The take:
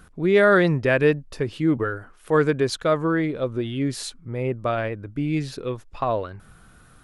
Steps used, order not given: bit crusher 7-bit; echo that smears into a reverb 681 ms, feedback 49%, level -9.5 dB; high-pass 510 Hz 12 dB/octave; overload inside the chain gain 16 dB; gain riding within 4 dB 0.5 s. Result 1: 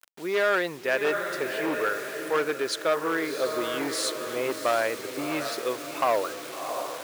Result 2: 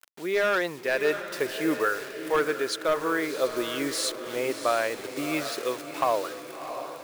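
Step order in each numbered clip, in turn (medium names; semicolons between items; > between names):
echo that smears into a reverb > bit crusher > gain riding > overload inside the chain > high-pass; bit crusher > high-pass > overload inside the chain > gain riding > echo that smears into a reverb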